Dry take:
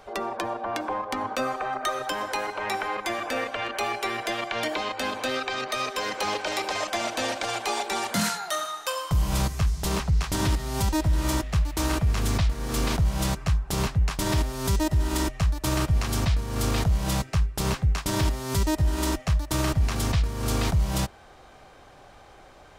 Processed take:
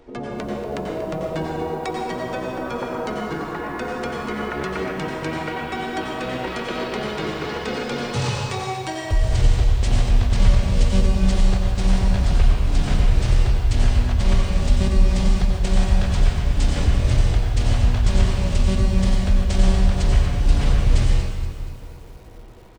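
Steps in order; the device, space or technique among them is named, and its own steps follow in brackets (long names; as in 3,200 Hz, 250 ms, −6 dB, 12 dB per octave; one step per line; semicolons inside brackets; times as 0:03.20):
0:15.10–0:16.56: hum removal 66.84 Hz, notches 10
slap from a distant wall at 230 metres, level −27 dB
monster voice (pitch shifter −8.5 semitones; low-shelf EQ 210 Hz +7 dB; single-tap delay 86 ms −14 dB; convolution reverb RT60 1.4 s, pre-delay 86 ms, DRR 0 dB)
feedback echo at a low word length 237 ms, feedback 55%, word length 7 bits, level −12 dB
level −2 dB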